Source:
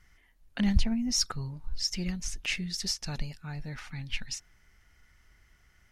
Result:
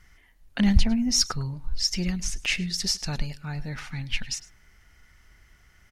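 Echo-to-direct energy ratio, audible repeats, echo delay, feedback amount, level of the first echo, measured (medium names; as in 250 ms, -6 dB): -19.5 dB, 1, 104 ms, no regular repeats, -19.5 dB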